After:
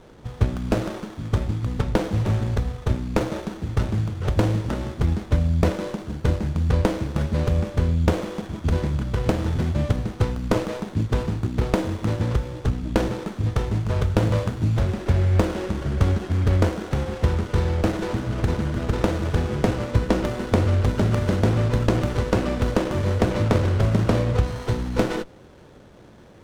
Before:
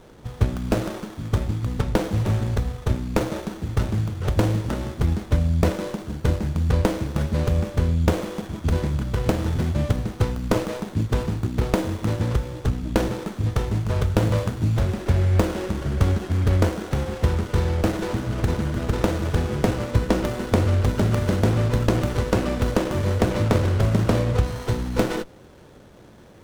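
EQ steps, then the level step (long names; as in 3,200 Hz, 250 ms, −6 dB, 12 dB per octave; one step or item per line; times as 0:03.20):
high-shelf EQ 10,000 Hz −9.5 dB
0.0 dB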